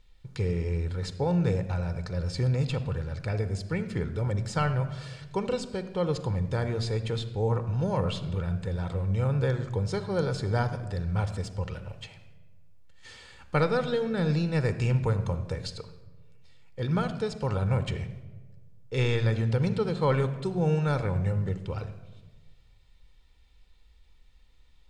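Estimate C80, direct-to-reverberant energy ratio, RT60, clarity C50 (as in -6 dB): 13.0 dB, 10.0 dB, 1.3 s, 12.0 dB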